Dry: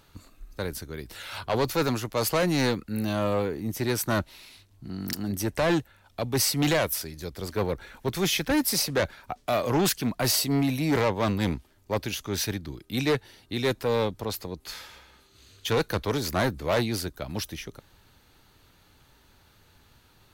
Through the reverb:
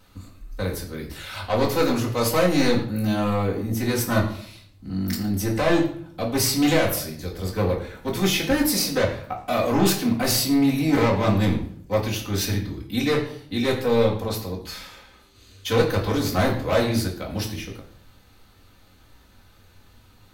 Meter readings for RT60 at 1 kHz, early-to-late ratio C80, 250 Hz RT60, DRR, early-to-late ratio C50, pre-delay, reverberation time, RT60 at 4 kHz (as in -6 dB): 0.55 s, 11.0 dB, 0.75 s, -7.0 dB, 8.0 dB, 4 ms, 0.60 s, 0.45 s